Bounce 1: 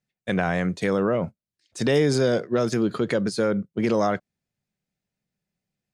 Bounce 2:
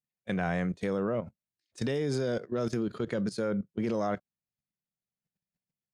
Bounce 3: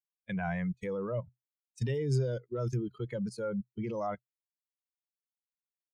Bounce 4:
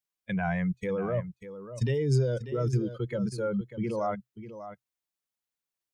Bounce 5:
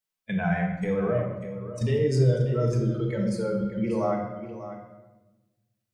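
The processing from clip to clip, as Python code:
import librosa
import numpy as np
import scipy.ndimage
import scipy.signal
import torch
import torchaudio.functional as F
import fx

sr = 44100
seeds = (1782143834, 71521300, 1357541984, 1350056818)

y1 = fx.hpss(x, sr, part='percussive', gain_db=-6)
y1 = fx.level_steps(y1, sr, step_db=14)
y1 = y1 * librosa.db_to_amplitude(-1.5)
y2 = fx.bin_expand(y1, sr, power=2.0)
y2 = fx.graphic_eq_31(y2, sr, hz=(125, 250, 4000), db=(12, -8, -9))
y3 = y2 + 10.0 ** (-12.0 / 20.0) * np.pad(y2, (int(592 * sr / 1000.0), 0))[:len(y2)]
y3 = y3 * librosa.db_to_amplitude(4.5)
y4 = fx.room_shoebox(y3, sr, seeds[0], volume_m3=590.0, walls='mixed', distance_m=1.5)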